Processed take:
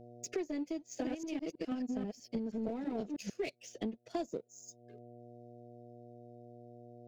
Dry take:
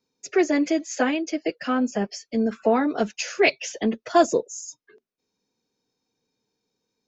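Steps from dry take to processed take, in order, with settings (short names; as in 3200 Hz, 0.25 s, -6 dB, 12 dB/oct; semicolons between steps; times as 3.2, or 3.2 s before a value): 0.75–3.3 reverse delay 0.161 s, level 0 dB; low shelf 330 Hz +8.5 dB; power-law curve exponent 1.4; buzz 120 Hz, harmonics 6, -64 dBFS 0 dB/oct; bell 1300 Hz -12.5 dB 1.2 oct; compressor 4:1, threshold -54 dBFS, peak gain reduction 32 dB; gain +12 dB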